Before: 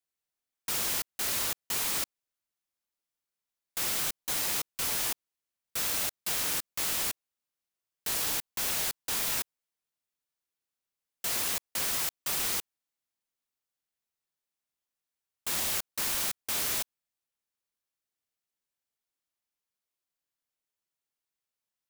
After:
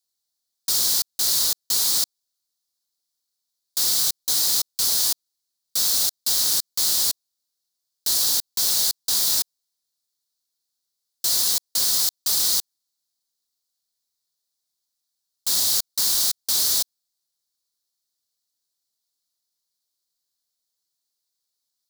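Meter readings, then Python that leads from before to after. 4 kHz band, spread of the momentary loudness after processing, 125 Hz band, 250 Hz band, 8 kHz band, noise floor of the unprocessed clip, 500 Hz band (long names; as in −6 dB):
+12.5 dB, 6 LU, can't be measured, 0.0 dB, +10.5 dB, below −85 dBFS, 0.0 dB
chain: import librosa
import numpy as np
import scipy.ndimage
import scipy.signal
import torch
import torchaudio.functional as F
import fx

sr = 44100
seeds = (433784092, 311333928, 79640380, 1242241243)

y = fx.high_shelf_res(x, sr, hz=3300.0, db=9.0, q=3.0)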